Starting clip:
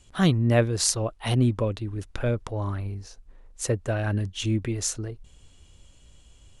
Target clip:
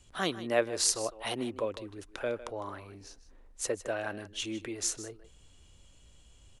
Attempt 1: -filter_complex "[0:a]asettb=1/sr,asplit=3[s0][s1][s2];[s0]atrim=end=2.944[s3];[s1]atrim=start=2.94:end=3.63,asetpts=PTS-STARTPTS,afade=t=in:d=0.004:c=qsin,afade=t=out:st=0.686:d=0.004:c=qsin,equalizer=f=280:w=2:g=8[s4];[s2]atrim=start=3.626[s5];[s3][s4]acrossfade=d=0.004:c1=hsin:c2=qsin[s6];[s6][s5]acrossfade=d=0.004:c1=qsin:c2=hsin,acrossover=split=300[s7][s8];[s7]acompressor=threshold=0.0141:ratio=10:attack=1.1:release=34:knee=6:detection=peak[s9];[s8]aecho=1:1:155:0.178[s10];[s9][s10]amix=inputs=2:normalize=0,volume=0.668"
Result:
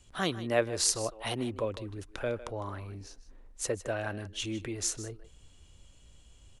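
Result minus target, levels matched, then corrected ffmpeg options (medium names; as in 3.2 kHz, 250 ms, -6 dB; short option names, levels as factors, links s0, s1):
compression: peak gain reduction -10.5 dB
-filter_complex "[0:a]asettb=1/sr,asplit=3[s0][s1][s2];[s0]atrim=end=2.944[s3];[s1]atrim=start=2.94:end=3.63,asetpts=PTS-STARTPTS,afade=t=in:d=0.004:c=qsin,afade=t=out:st=0.686:d=0.004:c=qsin,equalizer=f=280:w=2:g=8[s4];[s2]atrim=start=3.626[s5];[s3][s4]acrossfade=d=0.004:c1=hsin:c2=qsin[s6];[s6][s5]acrossfade=d=0.004:c1=qsin:c2=hsin,acrossover=split=300[s7][s8];[s7]acompressor=threshold=0.00376:ratio=10:attack=1.1:release=34:knee=6:detection=peak[s9];[s8]aecho=1:1:155:0.178[s10];[s9][s10]amix=inputs=2:normalize=0,volume=0.668"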